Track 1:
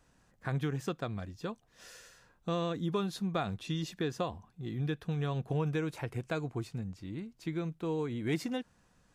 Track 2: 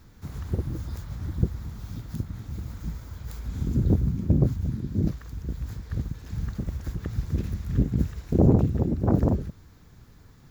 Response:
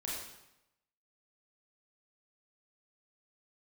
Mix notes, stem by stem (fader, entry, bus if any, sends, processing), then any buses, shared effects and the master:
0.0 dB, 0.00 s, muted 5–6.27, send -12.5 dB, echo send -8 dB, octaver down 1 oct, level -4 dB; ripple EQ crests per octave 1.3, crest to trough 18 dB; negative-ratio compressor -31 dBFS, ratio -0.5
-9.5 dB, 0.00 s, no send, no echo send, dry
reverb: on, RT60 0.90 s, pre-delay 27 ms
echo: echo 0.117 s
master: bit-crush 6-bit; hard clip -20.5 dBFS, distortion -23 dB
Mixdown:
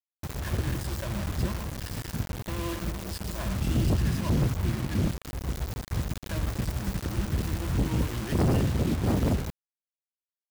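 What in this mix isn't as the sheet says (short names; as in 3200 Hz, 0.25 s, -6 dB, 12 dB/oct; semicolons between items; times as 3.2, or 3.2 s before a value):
stem 1 0.0 dB -> -6.0 dB; stem 2 -9.5 dB -> 0.0 dB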